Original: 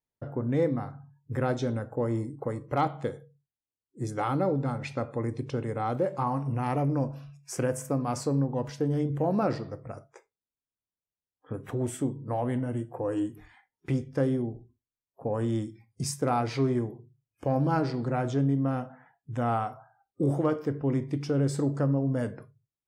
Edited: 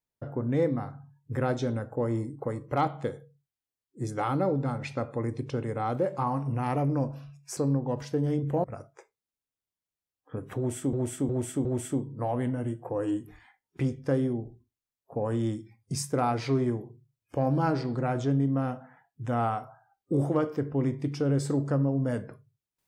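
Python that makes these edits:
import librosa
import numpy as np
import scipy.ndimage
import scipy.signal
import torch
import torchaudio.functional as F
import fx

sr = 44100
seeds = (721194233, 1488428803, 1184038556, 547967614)

y = fx.edit(x, sr, fx.cut(start_s=7.57, length_s=0.67),
    fx.cut(start_s=9.31, length_s=0.5),
    fx.repeat(start_s=11.74, length_s=0.36, count=4), tone=tone)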